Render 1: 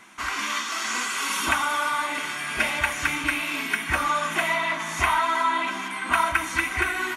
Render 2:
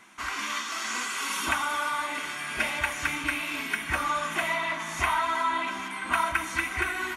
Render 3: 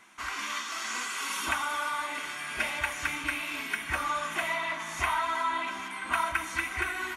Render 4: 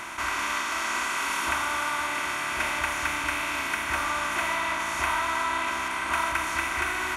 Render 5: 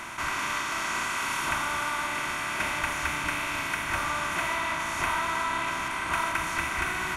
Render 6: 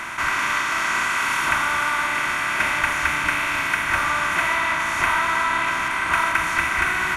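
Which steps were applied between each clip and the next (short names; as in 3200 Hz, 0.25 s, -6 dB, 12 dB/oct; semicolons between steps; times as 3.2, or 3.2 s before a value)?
darkening echo 0.26 s, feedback 79%, level -21 dB; gain -4 dB
bell 190 Hz -3.5 dB 1.8 oct; gain -2.5 dB
per-bin compression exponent 0.4; gain -2.5 dB
octaver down 1 oct, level 0 dB; gain -1.5 dB
bell 1700 Hz +6.5 dB 1.3 oct; gain +3.5 dB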